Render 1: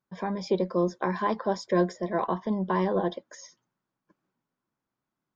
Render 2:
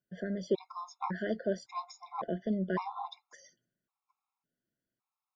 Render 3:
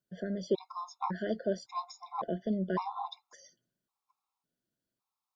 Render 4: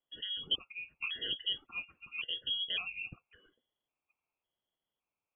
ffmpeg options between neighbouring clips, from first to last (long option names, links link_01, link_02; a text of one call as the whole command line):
ffmpeg -i in.wav -af "afftfilt=real='re*gt(sin(2*PI*0.9*pts/sr)*(1-2*mod(floor(b*sr/1024/700),2)),0)':imag='im*gt(sin(2*PI*0.9*pts/sr)*(1-2*mod(floor(b*sr/1024/700),2)),0)':win_size=1024:overlap=0.75,volume=-3.5dB" out.wav
ffmpeg -i in.wav -af "equalizer=frequency=1000:width_type=o:width=1:gain=3,equalizer=frequency=2000:width_type=o:width=1:gain=-6,equalizer=frequency=4000:width_type=o:width=1:gain=4" out.wav
ffmpeg -i in.wav -af "aexciter=amount=7.7:drive=3.8:freq=2400,lowpass=frequency=3000:width_type=q:width=0.5098,lowpass=frequency=3000:width_type=q:width=0.6013,lowpass=frequency=3000:width_type=q:width=0.9,lowpass=frequency=3000:width_type=q:width=2.563,afreqshift=-3500,volume=-4dB" out.wav